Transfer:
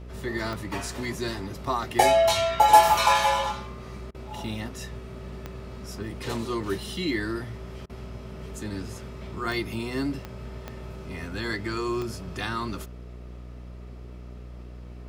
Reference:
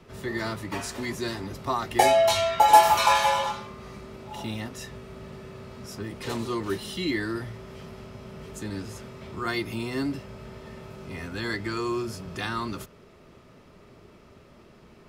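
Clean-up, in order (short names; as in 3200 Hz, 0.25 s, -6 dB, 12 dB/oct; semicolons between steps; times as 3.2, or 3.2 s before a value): de-click; de-hum 60.8 Hz, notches 12; interpolate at 4.11/7.86, 34 ms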